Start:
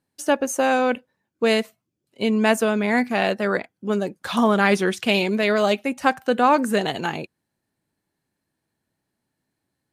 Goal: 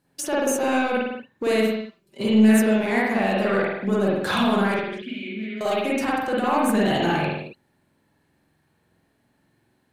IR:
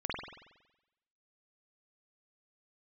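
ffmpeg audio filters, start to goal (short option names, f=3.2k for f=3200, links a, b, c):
-filter_complex "[0:a]asettb=1/sr,asplit=3[a][b][c];[a]atrim=end=1.534[d];[b]atrim=start=1.53:end=2.79,asetpts=PTS-STARTPTS,afade=t=in:d=0.004:c=qsin,afade=t=out:st=1.256:d=0.004:c=qsin,aecho=1:1:5.1:0.87,atrim=end_sample=55566[e];[c]atrim=start=2.786[f];[d][e]acrossfade=d=0.004:c1=hsin:c2=qsin[g];[g][f]acrossfade=d=0.004:c1=qsin:c2=hsin,acrossover=split=7200[h][i];[h]acompressor=threshold=-27dB:ratio=4[j];[j][i]amix=inputs=2:normalize=0,alimiter=limit=-23.5dB:level=0:latency=1:release=17,asplit=2[k][l];[l]volume=31dB,asoftclip=hard,volume=-31dB,volume=-5dB[m];[k][m]amix=inputs=2:normalize=0,asettb=1/sr,asplit=3[n][o][p];[n]atrim=end=4.744[q];[o]atrim=start=4.74:end=5.61,asetpts=PTS-STARTPTS,afade=t=in:d=0.004:c=qsin,afade=t=out:st=0.866:d=0.004:c=qsin,asplit=3[r][s][t];[r]bandpass=f=270:t=q:w=8,volume=0dB[u];[s]bandpass=f=2.29k:t=q:w=8,volume=-6dB[v];[t]bandpass=f=3.01k:t=q:w=8,volume=-9dB[w];[u][v][w]amix=inputs=3:normalize=0[x];[p]atrim=start=5.606[y];[q][x]acrossfade=d=0.004:c1=hsin:c2=qsin[z];[z][y]acrossfade=d=0.004:c1=qsin:c2=hsin[aa];[1:a]atrim=start_sample=2205,afade=t=out:st=0.35:d=0.01,atrim=end_sample=15876[ab];[aa][ab]afir=irnorm=-1:irlink=0,volume=4dB"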